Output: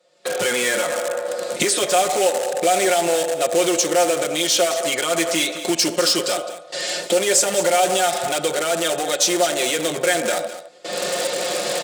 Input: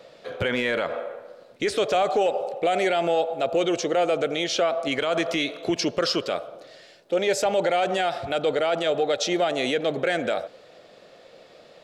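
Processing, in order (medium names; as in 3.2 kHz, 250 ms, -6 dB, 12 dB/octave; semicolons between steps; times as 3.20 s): recorder AGC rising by 33 dB/s; gate with hold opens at -24 dBFS; comb 5.6 ms, depth 95%; FDN reverb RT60 0.3 s, low-frequency decay 1.1×, high-frequency decay 1×, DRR 14 dB; in parallel at -8.5 dB: integer overflow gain 20 dB; on the sum: Bessel high-pass 220 Hz, order 2; peaking EQ 8.2 kHz +14.5 dB 0.97 oct; delay 211 ms -13.5 dB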